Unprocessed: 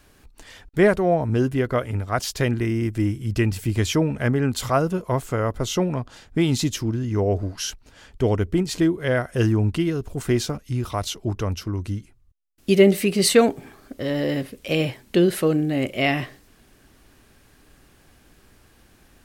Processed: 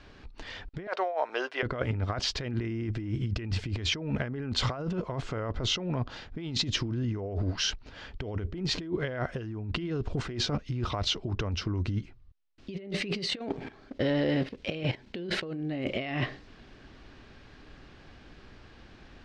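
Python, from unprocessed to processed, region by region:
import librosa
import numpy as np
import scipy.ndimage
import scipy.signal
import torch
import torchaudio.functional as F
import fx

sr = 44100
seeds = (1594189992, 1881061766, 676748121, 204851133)

y = fx.chain(x, sr, fx.highpass(hz=590.0, slope=24),
    fx.peak_eq(hz=7400.0, db=-5.0, octaves=0.29), at=(0.87, 1.63))
y = fx.chain(y, sr, fx.notch(hz=1200.0, q=9.0),
    fx.level_steps(step_db=11),
    fx.leveller(passes=1), at=(13.28, 15.45))
y = scipy.signal.sosfilt(scipy.signal.butter(4, 4800.0, 'lowpass', fs=sr, output='sos'), y)
y = fx.over_compress(y, sr, threshold_db=-29.0, ratio=-1.0)
y = y * librosa.db_to_amplitude(-3.0)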